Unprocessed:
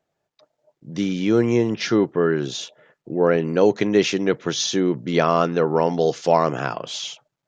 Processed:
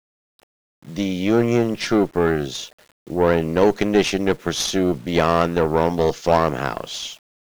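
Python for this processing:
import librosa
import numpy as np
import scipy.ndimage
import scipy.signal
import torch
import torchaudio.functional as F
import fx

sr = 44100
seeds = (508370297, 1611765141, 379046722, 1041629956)

y = fx.cheby_harmonics(x, sr, harmonics=(4, 8), levels_db=(-22, -25), full_scale_db=-3.5)
y = fx.quant_dither(y, sr, seeds[0], bits=8, dither='none')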